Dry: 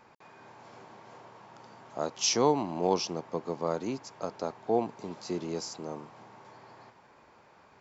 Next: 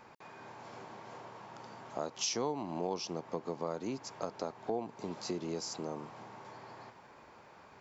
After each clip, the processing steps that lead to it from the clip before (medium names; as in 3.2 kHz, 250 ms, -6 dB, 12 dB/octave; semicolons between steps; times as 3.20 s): compression 3:1, threshold -37 dBFS, peak gain reduction 13.5 dB; trim +2 dB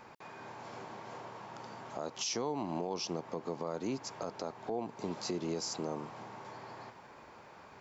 peak limiter -28.5 dBFS, peak gain reduction 8 dB; trim +2.5 dB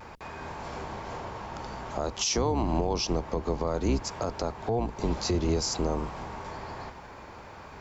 octave divider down 2 oct, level +2 dB; vibrato 0.52 Hz 21 cents; trim +8 dB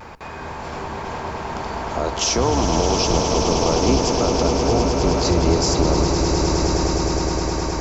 echo with a slow build-up 104 ms, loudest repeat 8, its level -9 dB; trim +7 dB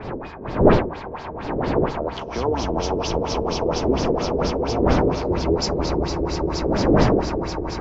wind noise 480 Hz -19 dBFS; LFO low-pass sine 4.3 Hz 400–5100 Hz; trim -6.5 dB